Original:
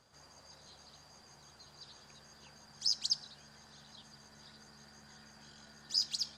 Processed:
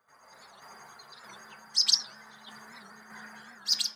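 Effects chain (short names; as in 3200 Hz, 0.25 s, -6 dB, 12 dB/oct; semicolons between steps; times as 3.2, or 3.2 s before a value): per-bin expansion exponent 1.5; tilt +3.5 dB/oct; AGC gain up to 12 dB; tremolo saw down 1 Hz, depth 50%; time stretch by phase-locked vocoder 0.62×; reverb RT60 0.45 s, pre-delay 3 ms, DRR 7.5 dB; record warp 78 rpm, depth 160 cents; gain -1 dB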